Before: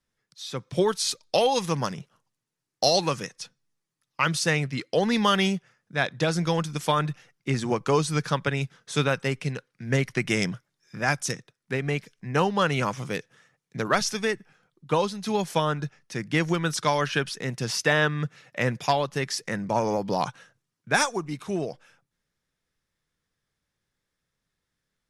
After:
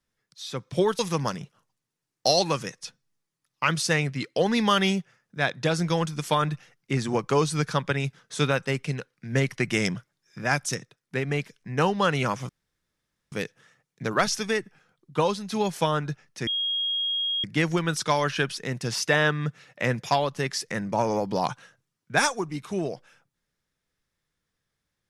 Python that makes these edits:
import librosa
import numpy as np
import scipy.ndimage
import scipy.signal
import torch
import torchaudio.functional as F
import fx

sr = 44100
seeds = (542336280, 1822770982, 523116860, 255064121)

y = fx.edit(x, sr, fx.cut(start_s=0.99, length_s=0.57),
    fx.insert_room_tone(at_s=13.06, length_s=0.83),
    fx.insert_tone(at_s=16.21, length_s=0.97, hz=3270.0, db=-24.0), tone=tone)